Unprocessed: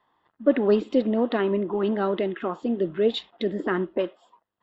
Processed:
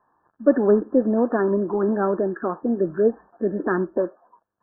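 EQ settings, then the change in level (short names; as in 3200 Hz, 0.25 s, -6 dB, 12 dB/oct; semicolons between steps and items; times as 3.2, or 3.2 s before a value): brick-wall FIR low-pass 1800 Hz; +3.0 dB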